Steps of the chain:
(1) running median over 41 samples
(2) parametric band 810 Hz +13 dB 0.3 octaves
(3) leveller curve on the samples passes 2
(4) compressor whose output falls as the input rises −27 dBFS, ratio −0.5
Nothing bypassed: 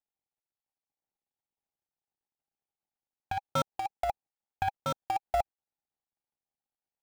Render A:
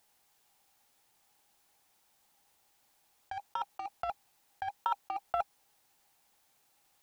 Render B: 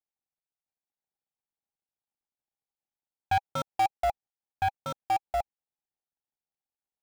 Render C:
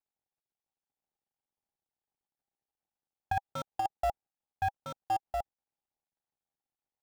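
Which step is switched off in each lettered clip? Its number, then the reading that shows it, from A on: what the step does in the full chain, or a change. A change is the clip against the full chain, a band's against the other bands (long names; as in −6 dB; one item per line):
1, 125 Hz band −14.5 dB
4, change in crest factor −4.0 dB
3, 2 kHz band +4.0 dB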